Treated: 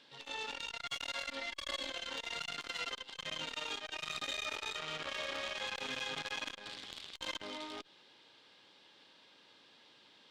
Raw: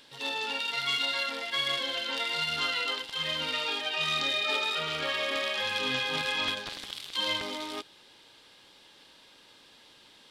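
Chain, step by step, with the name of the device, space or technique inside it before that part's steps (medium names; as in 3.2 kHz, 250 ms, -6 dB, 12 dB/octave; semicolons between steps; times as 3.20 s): valve radio (band-pass 120–5300 Hz; valve stage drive 26 dB, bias 0.65; transformer saturation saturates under 1.9 kHz); 1.27–1.90 s: comb 3.4 ms, depth 83%; trim -2 dB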